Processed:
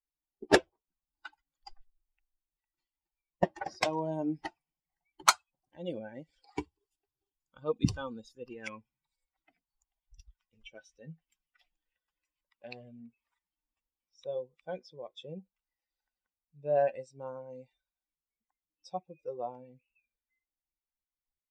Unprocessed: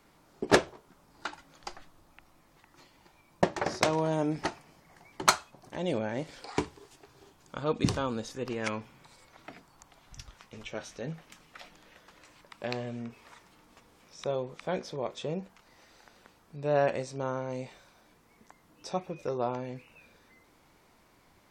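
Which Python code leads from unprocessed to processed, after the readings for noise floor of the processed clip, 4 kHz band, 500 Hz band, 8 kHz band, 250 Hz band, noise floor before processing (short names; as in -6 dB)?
under -85 dBFS, -2.5 dB, -3.5 dB, -1.0 dB, -4.0 dB, -63 dBFS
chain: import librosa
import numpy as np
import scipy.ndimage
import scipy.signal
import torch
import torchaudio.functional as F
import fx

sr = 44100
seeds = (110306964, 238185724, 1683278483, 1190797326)

y = fx.bin_expand(x, sr, power=2.0)
y = F.gain(torch.from_numpy(y), 1.5).numpy()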